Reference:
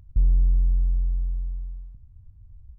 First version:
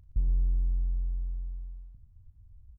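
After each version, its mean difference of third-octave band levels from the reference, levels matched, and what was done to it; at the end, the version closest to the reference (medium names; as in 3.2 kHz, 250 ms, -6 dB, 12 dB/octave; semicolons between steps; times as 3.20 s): 1.5 dB: doubling 36 ms -11.5 dB; on a send: delay 117 ms -12.5 dB; on the sum: trim -6.5 dB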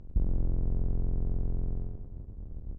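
6.0 dB: octave divider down 1 oct, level +3 dB; distance through air 79 m; compression 6:1, threshold -26 dBFS, peak gain reduction 15 dB; on a send: feedback delay 101 ms, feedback 59%, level -9.5 dB; on the sum: trim +1.5 dB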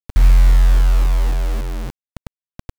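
18.0 dB: in parallel at -10 dB: saturation -29 dBFS, distortion -6 dB; on the sum: hum notches 50/100/150 Hz; bit crusher 6-bit; trim +8.5 dB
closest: first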